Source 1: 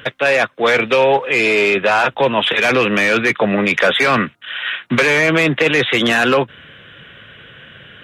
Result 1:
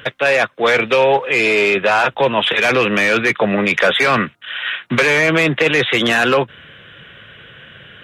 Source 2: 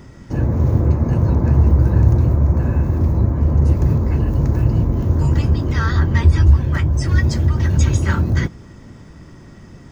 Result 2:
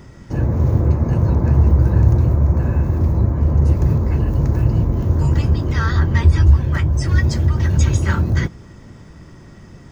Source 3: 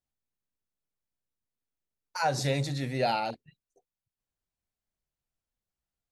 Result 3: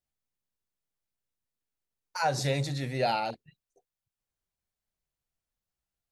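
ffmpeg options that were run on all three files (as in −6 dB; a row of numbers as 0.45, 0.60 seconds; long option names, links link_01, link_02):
-af "equalizer=frequency=260:width=3.6:gain=-3"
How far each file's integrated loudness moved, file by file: 0.0, 0.0, 0.0 LU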